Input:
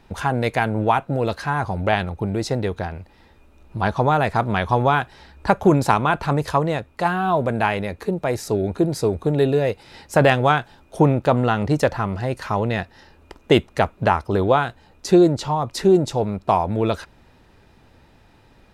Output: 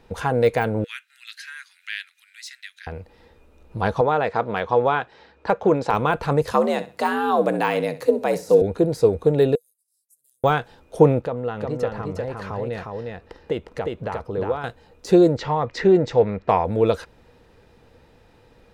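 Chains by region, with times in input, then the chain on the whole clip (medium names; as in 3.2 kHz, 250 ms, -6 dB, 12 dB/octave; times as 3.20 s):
0.84–2.87 s: steep high-pass 1.7 kHz 48 dB/octave + upward compressor, threshold -48 dBFS
4.01–5.94 s: high-pass 320 Hz 6 dB/octave + distance through air 120 m
6.51–8.62 s: treble shelf 4.2 kHz +7.5 dB + frequency shift +68 Hz + feedback delay 65 ms, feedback 25%, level -15 dB
9.55–10.44 s: gate -47 dBFS, range -8 dB + inverse Chebyshev high-pass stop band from 2.5 kHz, stop band 70 dB + compression 3:1, threshold -56 dBFS
11.21–14.64 s: treble shelf 4.8 kHz -9.5 dB + compression 2:1, threshold -32 dBFS + delay 357 ms -3 dB
15.37–16.65 s: Bessel low-pass 4.4 kHz, order 6 + peaking EQ 1.9 kHz +11.5 dB 0.65 oct
whole clip: peaking EQ 480 Hz +12.5 dB 0.23 oct; de-esser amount 65%; trim -2 dB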